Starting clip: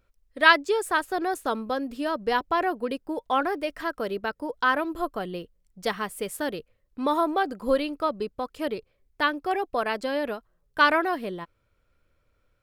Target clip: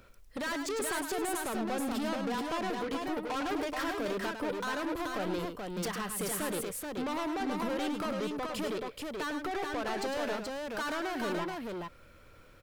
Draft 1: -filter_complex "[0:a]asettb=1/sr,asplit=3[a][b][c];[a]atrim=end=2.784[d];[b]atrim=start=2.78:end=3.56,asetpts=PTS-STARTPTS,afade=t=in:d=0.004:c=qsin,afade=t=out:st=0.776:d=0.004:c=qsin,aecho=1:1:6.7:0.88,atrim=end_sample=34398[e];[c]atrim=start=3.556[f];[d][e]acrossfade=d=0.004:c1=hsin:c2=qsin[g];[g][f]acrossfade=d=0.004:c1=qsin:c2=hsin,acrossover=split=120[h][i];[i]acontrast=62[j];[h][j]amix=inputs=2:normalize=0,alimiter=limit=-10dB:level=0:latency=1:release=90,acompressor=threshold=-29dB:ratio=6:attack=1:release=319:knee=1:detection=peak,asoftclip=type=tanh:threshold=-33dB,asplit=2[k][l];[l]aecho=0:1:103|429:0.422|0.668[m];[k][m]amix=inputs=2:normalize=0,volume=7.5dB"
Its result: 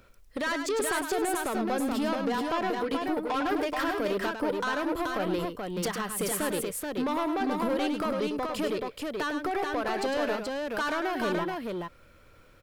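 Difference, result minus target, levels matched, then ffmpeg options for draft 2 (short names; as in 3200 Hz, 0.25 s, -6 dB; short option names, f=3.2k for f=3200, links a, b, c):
soft clip: distortion -6 dB
-filter_complex "[0:a]asettb=1/sr,asplit=3[a][b][c];[a]atrim=end=2.784[d];[b]atrim=start=2.78:end=3.56,asetpts=PTS-STARTPTS,afade=t=in:d=0.004:c=qsin,afade=t=out:st=0.776:d=0.004:c=qsin,aecho=1:1:6.7:0.88,atrim=end_sample=34398[e];[c]atrim=start=3.556[f];[d][e]acrossfade=d=0.004:c1=hsin:c2=qsin[g];[g][f]acrossfade=d=0.004:c1=qsin:c2=hsin,acrossover=split=120[h][i];[i]acontrast=62[j];[h][j]amix=inputs=2:normalize=0,alimiter=limit=-10dB:level=0:latency=1:release=90,acompressor=threshold=-29dB:ratio=6:attack=1:release=319:knee=1:detection=peak,asoftclip=type=tanh:threshold=-40.5dB,asplit=2[k][l];[l]aecho=0:1:103|429:0.422|0.668[m];[k][m]amix=inputs=2:normalize=0,volume=7.5dB"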